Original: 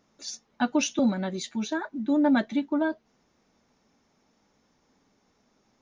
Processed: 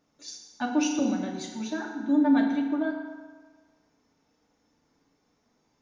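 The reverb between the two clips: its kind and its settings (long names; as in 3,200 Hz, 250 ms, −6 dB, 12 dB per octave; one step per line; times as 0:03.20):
feedback delay network reverb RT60 1.5 s, low-frequency decay 0.9×, high-frequency decay 0.7×, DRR 0 dB
level −6 dB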